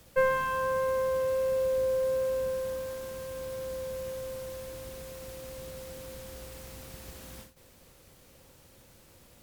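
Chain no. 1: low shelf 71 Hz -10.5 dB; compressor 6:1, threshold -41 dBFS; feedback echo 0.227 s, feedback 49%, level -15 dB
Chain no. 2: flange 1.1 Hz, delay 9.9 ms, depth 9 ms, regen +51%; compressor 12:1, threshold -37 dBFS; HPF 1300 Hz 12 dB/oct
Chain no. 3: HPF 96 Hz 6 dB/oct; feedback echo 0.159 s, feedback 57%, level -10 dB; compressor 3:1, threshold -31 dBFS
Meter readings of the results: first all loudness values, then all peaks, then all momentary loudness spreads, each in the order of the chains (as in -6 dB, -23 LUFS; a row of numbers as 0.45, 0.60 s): -43.5, -51.0, -36.0 LUFS; -29.0, -37.0, -22.0 dBFS; 15, 14, 14 LU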